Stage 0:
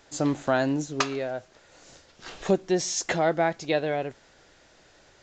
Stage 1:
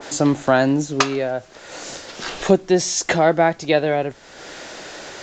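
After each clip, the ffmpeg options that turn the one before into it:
-filter_complex "[0:a]acrossover=split=170[a][b];[b]acompressor=mode=upward:threshold=-30dB:ratio=2.5[c];[a][c]amix=inputs=2:normalize=0,adynamicequalizer=threshold=0.0158:dfrequency=1700:dqfactor=0.7:tfrequency=1700:tqfactor=0.7:attack=5:release=100:ratio=0.375:range=1.5:mode=cutabove:tftype=highshelf,volume=8dB"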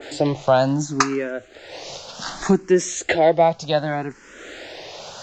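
-filter_complex "[0:a]asplit=2[a][b];[b]afreqshift=0.66[c];[a][c]amix=inputs=2:normalize=1,volume=1.5dB"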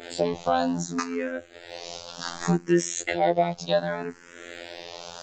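-af "afftfilt=real='hypot(re,im)*cos(PI*b)':imag='0':win_size=2048:overlap=0.75,alimiter=limit=-8.5dB:level=0:latency=1:release=241"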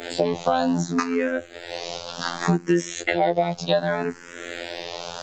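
-filter_complex "[0:a]acrossover=split=89|4700[a][b][c];[a]acompressor=threshold=-58dB:ratio=4[d];[b]acompressor=threshold=-24dB:ratio=4[e];[c]acompressor=threshold=-48dB:ratio=4[f];[d][e][f]amix=inputs=3:normalize=0,volume=7dB"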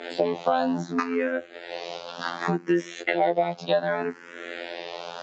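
-af "highpass=230,lowpass=3.5k,volume=-1.5dB"

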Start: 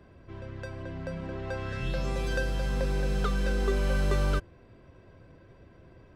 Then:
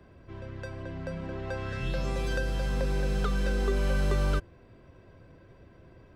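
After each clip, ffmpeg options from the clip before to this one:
-filter_complex "[0:a]acrossover=split=370[a][b];[b]acompressor=threshold=-30dB:ratio=6[c];[a][c]amix=inputs=2:normalize=0"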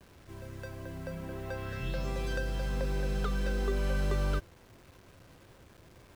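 -af "acrusher=bits=8:mix=0:aa=0.000001,volume=-3.5dB"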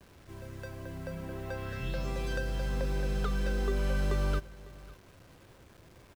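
-af "aecho=1:1:551:0.1"

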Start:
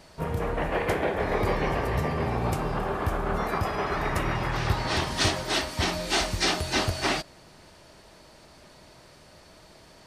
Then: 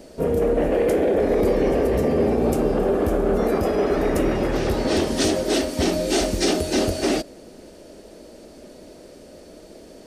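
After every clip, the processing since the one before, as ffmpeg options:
-filter_complex "[0:a]equalizer=f=125:t=o:w=1:g=-11,equalizer=f=250:t=o:w=1:g=9,equalizer=f=500:t=o:w=1:g=9,equalizer=f=1k:t=o:w=1:g=-11,equalizer=f=2k:t=o:w=1:g=-5,equalizer=f=4k:t=o:w=1:g=-5,acrossover=split=4800[a][b];[a]alimiter=limit=-18.5dB:level=0:latency=1:release=17[c];[c][b]amix=inputs=2:normalize=0,volume=6.5dB"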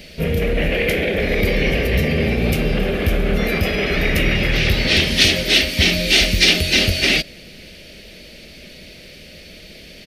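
-af "firequalizer=gain_entry='entry(170,0);entry(280,-13);entry(540,-10);entry(940,-15);entry(2200,11);entry(3800,7);entry(7600,-9);entry(14000,3)':delay=0.05:min_phase=1,asoftclip=type=tanh:threshold=-10dB,volume=8.5dB"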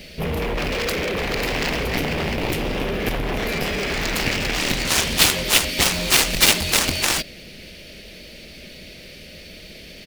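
-filter_complex "[0:a]acrossover=split=2100[a][b];[b]acrusher=bits=3:mode=log:mix=0:aa=0.000001[c];[a][c]amix=inputs=2:normalize=0,aeval=exprs='1*(cos(1*acos(clip(val(0)/1,-1,1)))-cos(1*PI/2))+0.158*(cos(5*acos(clip(val(0)/1,-1,1)))-cos(5*PI/2))+0.447*(cos(7*acos(clip(val(0)/1,-1,1)))-cos(7*PI/2))':c=same,volume=-3dB"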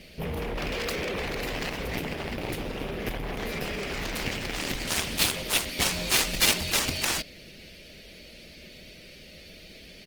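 -af "volume=-7dB" -ar 48000 -c:a libopus -b:a 20k

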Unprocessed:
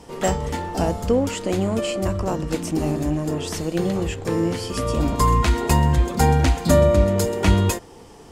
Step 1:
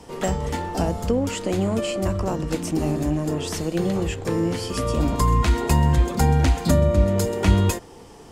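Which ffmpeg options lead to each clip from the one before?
-filter_complex "[0:a]acrossover=split=260[a][b];[b]acompressor=threshold=-22dB:ratio=4[c];[a][c]amix=inputs=2:normalize=0"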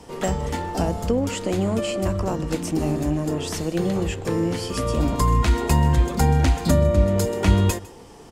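-af "aecho=1:1:153:0.0891"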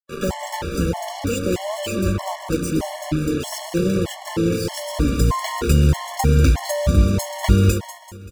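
-af "acrusher=bits=4:mix=0:aa=0.5,aecho=1:1:193|386|579|772|965:0.299|0.137|0.0632|0.0291|0.0134,afftfilt=real='re*gt(sin(2*PI*1.6*pts/sr)*(1-2*mod(floor(b*sr/1024/570),2)),0)':imag='im*gt(sin(2*PI*1.6*pts/sr)*(1-2*mod(floor(b*sr/1024/570),2)),0)':win_size=1024:overlap=0.75,volume=3.5dB"

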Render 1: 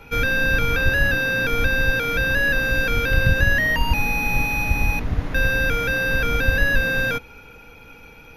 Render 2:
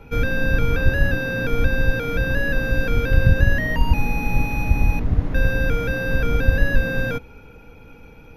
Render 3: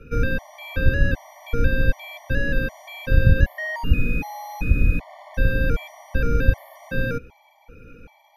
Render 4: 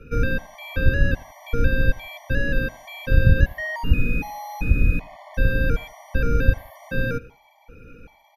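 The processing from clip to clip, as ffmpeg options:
-af "tiltshelf=f=830:g=6,volume=-2dB"
-filter_complex "[0:a]acrossover=split=450[a][b];[b]acompressor=threshold=-25dB:ratio=6[c];[a][c]amix=inputs=2:normalize=0,afftfilt=real='re*gt(sin(2*PI*1.3*pts/sr)*(1-2*mod(floor(b*sr/1024/590),2)),0)':imag='im*gt(sin(2*PI*1.3*pts/sr)*(1-2*mod(floor(b*sr/1024/590),2)),0)':win_size=1024:overlap=0.75"
-af "aecho=1:1:84|168:0.0708|0.0219"

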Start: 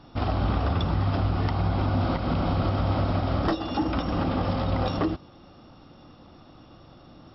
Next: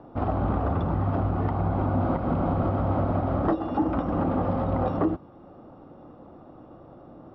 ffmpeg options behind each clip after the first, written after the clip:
-filter_complex "[0:a]lowpass=1.1k,lowshelf=f=120:g=-7.5,acrossover=split=440|530[a][b][c];[b]acompressor=mode=upward:threshold=-48dB:ratio=2.5[d];[a][d][c]amix=inputs=3:normalize=0,volume=3dB"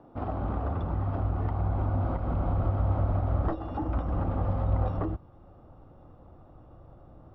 -af "asubboost=boost=7.5:cutoff=88,volume=-6.5dB"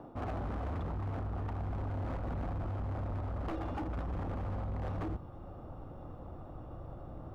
-af "areverse,acompressor=threshold=-37dB:ratio=4,areverse,asoftclip=type=hard:threshold=-39.5dB,volume=5.5dB"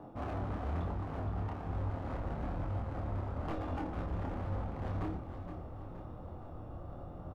-af "flanger=delay=9.6:depth=2:regen=-69:speed=0.34:shape=triangular,aecho=1:1:470|940|1410|1880|2350:0.316|0.152|0.0729|0.035|0.0168,flanger=delay=22.5:depth=6.9:speed=1.1,volume=7dB"

